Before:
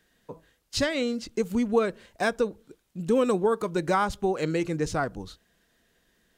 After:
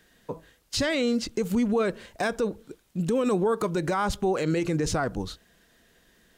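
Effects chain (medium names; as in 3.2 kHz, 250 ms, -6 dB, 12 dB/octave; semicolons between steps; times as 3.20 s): peak limiter -23.5 dBFS, peak gain reduction 11.5 dB; trim +6.5 dB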